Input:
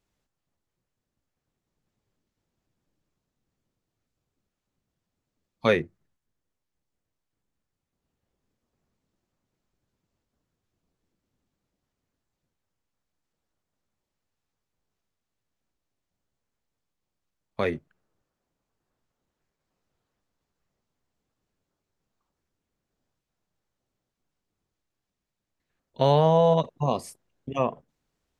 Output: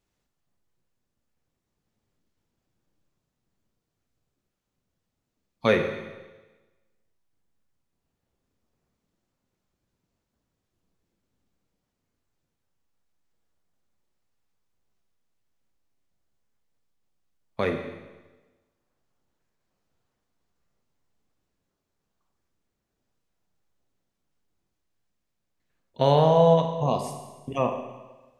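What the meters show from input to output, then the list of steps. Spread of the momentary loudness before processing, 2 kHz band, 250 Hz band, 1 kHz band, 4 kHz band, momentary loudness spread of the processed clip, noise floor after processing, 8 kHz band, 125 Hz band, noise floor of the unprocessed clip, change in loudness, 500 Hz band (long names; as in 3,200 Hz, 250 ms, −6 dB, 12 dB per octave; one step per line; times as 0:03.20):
16 LU, +1.0 dB, +1.5 dB, +1.0 dB, +1.0 dB, 22 LU, −81 dBFS, can't be measured, +1.0 dB, −85 dBFS, +1.0 dB, +1.5 dB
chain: four-comb reverb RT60 1.2 s, combs from 32 ms, DRR 5.5 dB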